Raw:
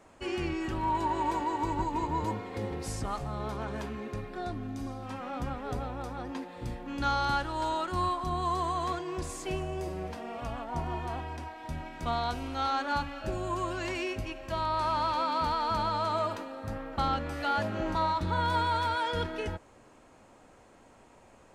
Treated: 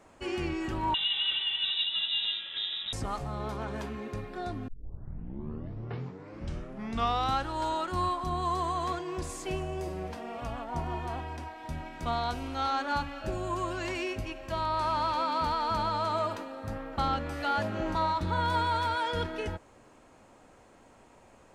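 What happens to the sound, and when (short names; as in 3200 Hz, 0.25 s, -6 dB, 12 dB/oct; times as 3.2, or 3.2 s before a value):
0.94–2.93 inverted band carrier 3800 Hz
4.68 tape start 2.80 s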